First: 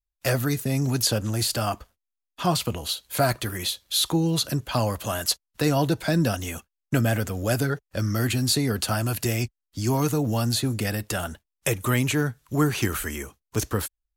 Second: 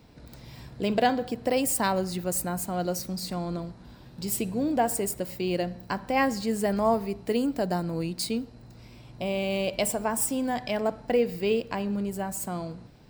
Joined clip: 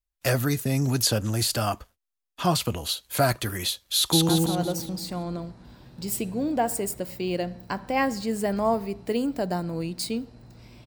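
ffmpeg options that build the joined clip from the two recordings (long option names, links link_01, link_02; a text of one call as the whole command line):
ffmpeg -i cue0.wav -i cue1.wav -filter_complex "[0:a]apad=whole_dur=10.86,atrim=end=10.86,atrim=end=4.292[link_01];[1:a]atrim=start=2.488:end=9.06[link_02];[link_01][link_02]acrossfade=duration=0.004:curve1=hsin:curve2=hsin,asplit=2[link_03][link_04];[link_04]afade=type=in:start_time=3.95:duration=0.01,afade=type=out:start_time=4.29:duration=0.01,aecho=0:1:170|340|510|680|850|1020|1190:0.944061|0.47203|0.236015|0.118008|0.0590038|0.0295019|0.014751[link_05];[link_03][link_05]amix=inputs=2:normalize=0" out.wav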